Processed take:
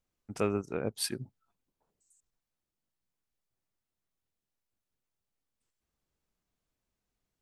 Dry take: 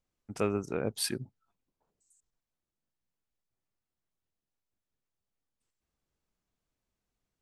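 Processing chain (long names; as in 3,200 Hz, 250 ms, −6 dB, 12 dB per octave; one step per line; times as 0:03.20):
0:00.61–0:01.18: expander for the loud parts 1.5 to 1, over −42 dBFS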